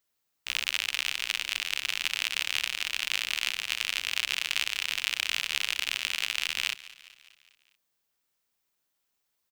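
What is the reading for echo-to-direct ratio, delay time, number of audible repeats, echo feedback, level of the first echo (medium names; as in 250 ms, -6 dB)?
-17.0 dB, 204 ms, 4, 56%, -18.5 dB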